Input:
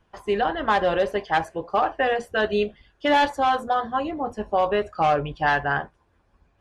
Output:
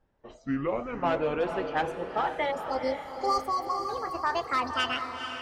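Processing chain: speed glide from 53% -> 191%; spectral delete 2.51–3.89, 1400–4100 Hz; diffused feedback echo 0.469 s, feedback 47%, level -7 dB; gain -7 dB

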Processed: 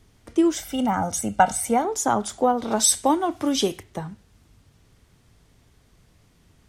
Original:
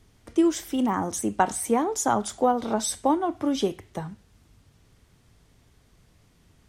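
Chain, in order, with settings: 0.57–1.85 comb 1.4 ms, depth 76%; 2.71–3.83 high shelf 2400 Hz +10 dB; gain +1.5 dB

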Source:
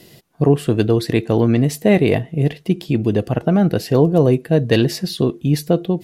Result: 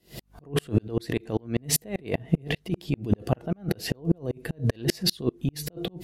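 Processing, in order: negative-ratio compressor -23 dBFS, ratio -1; hum 50 Hz, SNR 24 dB; dB-ramp tremolo swelling 5.1 Hz, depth 38 dB; gain +4 dB

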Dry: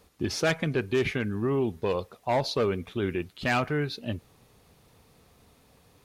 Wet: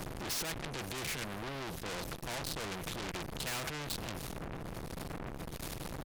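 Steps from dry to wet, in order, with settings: wind noise 120 Hz -31 dBFS; low shelf 290 Hz +6.5 dB; comb 6 ms, depth 51%; compressor 6:1, threshold -34 dBFS, peak gain reduction 25 dB; transient shaper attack -10 dB, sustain +6 dB; tube stage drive 46 dB, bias 0.55; spectral compressor 2:1; gain +17.5 dB

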